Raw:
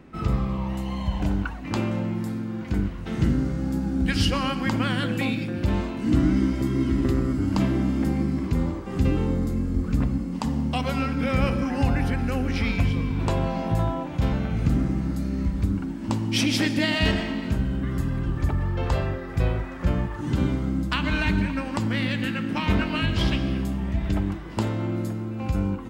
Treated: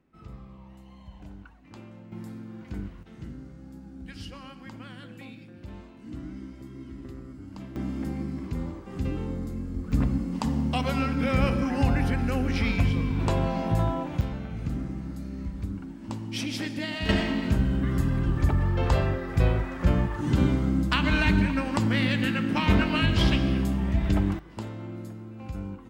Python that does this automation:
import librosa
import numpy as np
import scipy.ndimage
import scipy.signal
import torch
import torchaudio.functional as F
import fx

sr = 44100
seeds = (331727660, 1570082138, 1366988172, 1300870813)

y = fx.gain(x, sr, db=fx.steps((0.0, -20.0), (2.12, -10.5), (3.03, -18.5), (7.76, -8.0), (9.92, -1.0), (14.21, -9.0), (17.09, 1.0), (24.39, -10.5)))